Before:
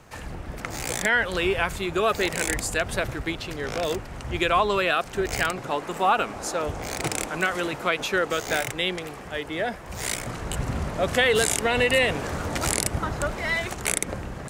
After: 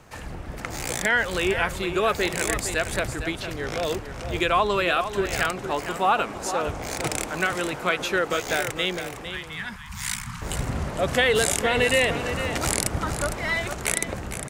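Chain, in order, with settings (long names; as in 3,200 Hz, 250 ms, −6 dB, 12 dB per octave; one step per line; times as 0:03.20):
0:09.30–0:10.42: elliptic band-stop filter 210–970 Hz, stop band 50 dB
single-tap delay 457 ms −10 dB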